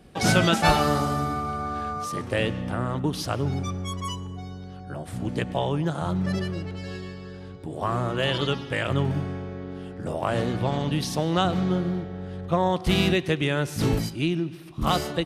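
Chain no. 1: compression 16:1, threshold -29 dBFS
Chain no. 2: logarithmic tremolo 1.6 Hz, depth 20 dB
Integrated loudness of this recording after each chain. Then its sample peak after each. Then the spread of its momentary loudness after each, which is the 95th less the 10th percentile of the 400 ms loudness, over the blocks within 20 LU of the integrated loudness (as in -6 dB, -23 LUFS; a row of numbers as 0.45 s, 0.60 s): -34.5 LUFS, -31.5 LUFS; -17.0 dBFS, -7.5 dBFS; 4 LU, 15 LU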